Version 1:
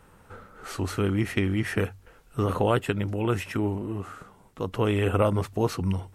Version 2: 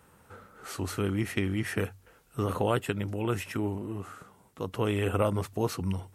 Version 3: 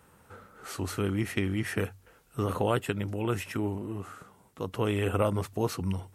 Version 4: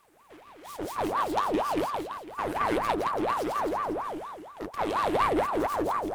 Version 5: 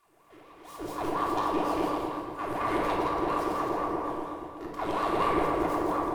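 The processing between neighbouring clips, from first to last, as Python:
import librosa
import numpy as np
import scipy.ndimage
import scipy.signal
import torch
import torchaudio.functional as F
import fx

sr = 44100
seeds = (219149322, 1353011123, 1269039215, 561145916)

y1 = scipy.signal.sosfilt(scipy.signal.butter(2, 62.0, 'highpass', fs=sr, output='sos'), x)
y1 = fx.high_shelf(y1, sr, hz=6700.0, db=7.0)
y1 = y1 * librosa.db_to_amplitude(-4.0)
y2 = y1
y3 = np.abs(y2)
y3 = fx.echo_feedback(y3, sr, ms=167, feedback_pct=50, wet_db=-3.5)
y3 = fx.ring_lfo(y3, sr, carrier_hz=740.0, swing_pct=60, hz=4.2)
y4 = fx.room_shoebox(y3, sr, seeds[0], volume_m3=1500.0, walls='mixed', distance_m=3.2)
y4 = y4 * librosa.db_to_amplitude(-7.5)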